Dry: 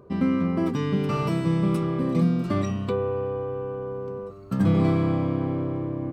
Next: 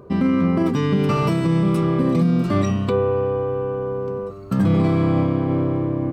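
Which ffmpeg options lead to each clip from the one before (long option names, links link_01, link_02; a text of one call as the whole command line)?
ffmpeg -i in.wav -af "alimiter=limit=-17.5dB:level=0:latency=1:release=45,volume=7dB" out.wav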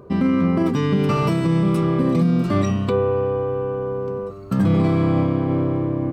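ffmpeg -i in.wav -af anull out.wav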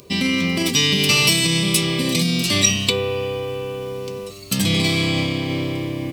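ffmpeg -i in.wav -af "aexciter=amount=13.7:drive=7.3:freq=2200,volume=-3.5dB" out.wav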